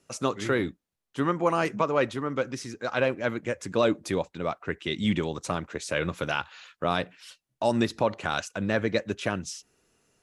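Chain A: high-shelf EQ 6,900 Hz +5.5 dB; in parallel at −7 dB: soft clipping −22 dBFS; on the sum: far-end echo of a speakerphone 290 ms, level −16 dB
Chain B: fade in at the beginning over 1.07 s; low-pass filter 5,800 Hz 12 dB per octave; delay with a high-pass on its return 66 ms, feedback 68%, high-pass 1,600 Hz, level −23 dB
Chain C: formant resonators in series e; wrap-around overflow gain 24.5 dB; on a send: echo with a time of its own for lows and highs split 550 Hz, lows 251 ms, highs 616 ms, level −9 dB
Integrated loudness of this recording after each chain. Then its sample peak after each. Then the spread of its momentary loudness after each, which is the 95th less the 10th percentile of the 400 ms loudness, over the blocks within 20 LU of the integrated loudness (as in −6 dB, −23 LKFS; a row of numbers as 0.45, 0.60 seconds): −26.0, −29.0, −36.5 LKFS; −9.0, −10.0, −21.0 dBFS; 7, 9, 12 LU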